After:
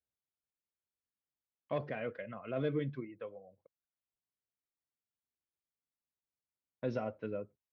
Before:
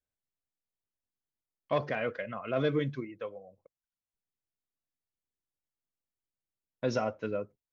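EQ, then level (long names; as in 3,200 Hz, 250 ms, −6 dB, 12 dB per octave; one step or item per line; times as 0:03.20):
high-pass filter 45 Hz
dynamic equaliser 1,100 Hz, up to −5 dB, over −43 dBFS, Q 1.1
high-frequency loss of the air 270 metres
−4.0 dB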